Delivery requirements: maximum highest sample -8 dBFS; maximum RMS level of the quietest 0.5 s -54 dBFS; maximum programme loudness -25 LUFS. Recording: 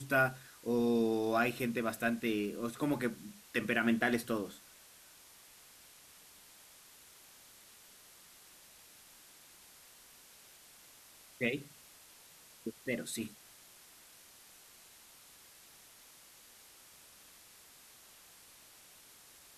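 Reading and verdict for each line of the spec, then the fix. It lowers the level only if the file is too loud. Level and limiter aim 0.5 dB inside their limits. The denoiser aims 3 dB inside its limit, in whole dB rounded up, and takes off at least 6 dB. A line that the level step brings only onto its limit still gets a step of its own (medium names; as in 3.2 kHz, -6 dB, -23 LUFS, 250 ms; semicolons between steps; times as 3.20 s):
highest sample -16.5 dBFS: pass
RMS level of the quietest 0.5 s -59 dBFS: pass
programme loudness -34.5 LUFS: pass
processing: none needed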